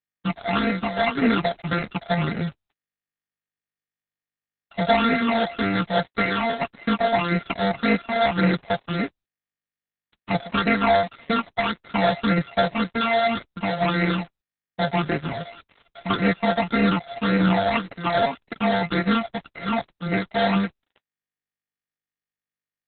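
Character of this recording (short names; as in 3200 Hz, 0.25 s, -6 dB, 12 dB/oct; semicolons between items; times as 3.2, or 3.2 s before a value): a buzz of ramps at a fixed pitch in blocks of 64 samples; phasing stages 8, 1.8 Hz, lowest notch 320–1000 Hz; a quantiser's noise floor 8-bit, dither none; Opus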